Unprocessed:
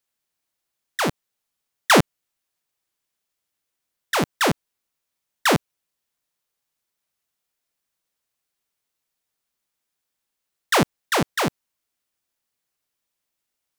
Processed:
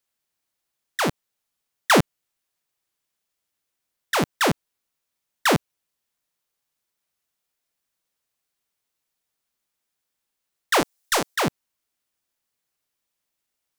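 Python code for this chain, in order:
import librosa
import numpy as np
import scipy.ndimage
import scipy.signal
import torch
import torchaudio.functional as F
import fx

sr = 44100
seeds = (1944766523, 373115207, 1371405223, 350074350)

y = fx.bass_treble(x, sr, bass_db=-13, treble_db=9, at=(10.8, 11.36))
y = 10.0 ** (-8.5 / 20.0) * np.tanh(y / 10.0 ** (-8.5 / 20.0))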